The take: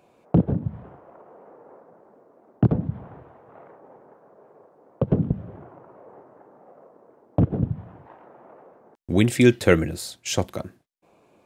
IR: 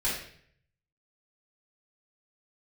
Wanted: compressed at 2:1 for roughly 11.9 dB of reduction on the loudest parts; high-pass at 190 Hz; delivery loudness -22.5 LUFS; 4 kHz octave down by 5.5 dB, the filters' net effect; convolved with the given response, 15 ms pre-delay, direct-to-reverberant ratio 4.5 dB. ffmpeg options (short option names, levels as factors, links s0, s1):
-filter_complex "[0:a]highpass=190,equalizer=f=4000:t=o:g=-7.5,acompressor=threshold=0.02:ratio=2,asplit=2[s0][s1];[1:a]atrim=start_sample=2205,adelay=15[s2];[s1][s2]afir=irnorm=-1:irlink=0,volume=0.224[s3];[s0][s3]amix=inputs=2:normalize=0,volume=3.98"